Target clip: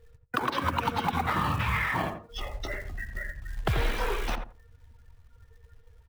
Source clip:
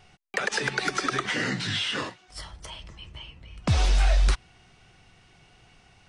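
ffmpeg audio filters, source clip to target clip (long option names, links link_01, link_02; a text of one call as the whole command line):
ffmpeg -i in.wav -filter_complex "[0:a]afftdn=noise_reduction=23:noise_floor=-47,asplit=2[link_01][link_02];[link_02]acompressor=threshold=-31dB:ratio=20,volume=2.5dB[link_03];[link_01][link_03]amix=inputs=2:normalize=0,asetrate=27781,aresample=44100,atempo=1.5874,acrossover=split=130|560|1900[link_04][link_05][link_06][link_07];[link_04]acompressor=threshold=-28dB:ratio=4[link_08];[link_05]acompressor=threshold=-36dB:ratio=4[link_09];[link_06]acompressor=threshold=-27dB:ratio=4[link_10];[link_07]acompressor=threshold=-40dB:ratio=4[link_11];[link_08][link_09][link_10][link_11]amix=inputs=4:normalize=0,acrusher=bits=5:mode=log:mix=0:aa=0.000001,asplit=2[link_12][link_13];[link_13]adelay=85,lowpass=frequency=960:poles=1,volume=-5dB,asplit=2[link_14][link_15];[link_15]adelay=85,lowpass=frequency=960:poles=1,volume=0.21,asplit=2[link_16][link_17];[link_17]adelay=85,lowpass=frequency=960:poles=1,volume=0.21[link_18];[link_14][link_16][link_18]amix=inputs=3:normalize=0[link_19];[link_12][link_19]amix=inputs=2:normalize=0" out.wav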